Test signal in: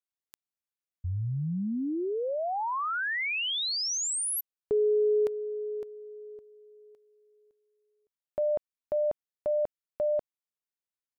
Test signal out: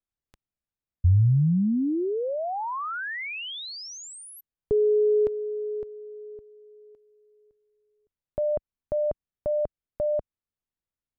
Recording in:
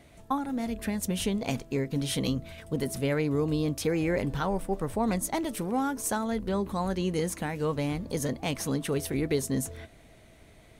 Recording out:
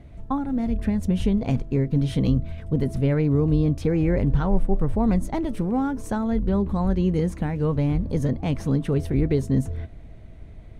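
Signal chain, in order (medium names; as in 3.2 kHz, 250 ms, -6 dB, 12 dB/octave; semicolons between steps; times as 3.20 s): RIAA curve playback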